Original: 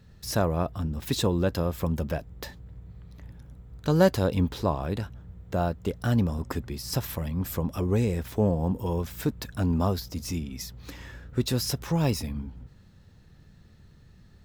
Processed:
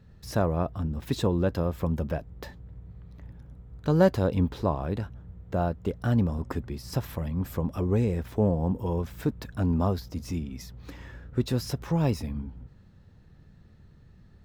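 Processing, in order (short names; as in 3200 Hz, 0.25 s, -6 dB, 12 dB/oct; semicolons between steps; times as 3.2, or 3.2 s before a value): high shelf 2800 Hz -10 dB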